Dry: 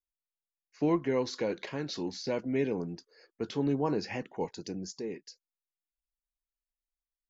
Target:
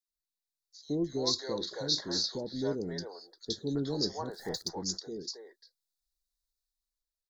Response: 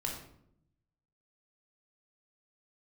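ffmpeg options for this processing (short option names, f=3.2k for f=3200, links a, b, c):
-filter_complex "[0:a]equalizer=f=125:t=o:w=1:g=-7,equalizer=f=250:t=o:w=1:g=-8,equalizer=f=500:t=o:w=1:g=-4,equalizer=f=1k:t=o:w=1:g=-8,equalizer=f=2k:t=o:w=1:g=-9,equalizer=f=4k:t=o:w=1:g=9,dynaudnorm=f=160:g=9:m=6.5dB,asettb=1/sr,asplit=3[a][b][c];[a]atrim=end=1.424[d];[b]atrim=start=1.42:end=2.23,asetpts=PTS-STARTPTS,afade=t=in:d=0.004:c=qsin,afade=t=out:st=0.806:d=0.004:c=qsin,asplit=2[e][f];[f]adelay=44,volume=-13dB[g];[e][g]amix=inputs=2:normalize=0,atrim=end_sample=35721[h];[c]atrim=start=2.226[i];[d][h]acrossfade=d=0.004:c1=hsin:c2=qsin[j];[j][i]acrossfade=d=0.004:c1=qsin:c2=hsin,asettb=1/sr,asplit=3[k][l][m];[k]atrim=end=4.284[n];[l]atrim=start=4.28:end=4.69,asetpts=PTS-STARTPTS,afade=t=in:d=0.004:c=qsin,afade=t=out:st=0.406:d=0.004:c=qsin,acrusher=bits=9:dc=4:mix=0:aa=0.000001[o];[m]atrim=start=4.686[p];[n][o]acrossfade=d=0.004:c1=hsin:c2=qsin[q];[q][p]acrossfade=d=0.004:c1=qsin:c2=hsin,asuperstop=centerf=2600:order=8:qfactor=1.7,acrossover=split=540|2800[r][s][t];[r]adelay=80[u];[s]adelay=350[v];[u][v][t]amix=inputs=3:normalize=0"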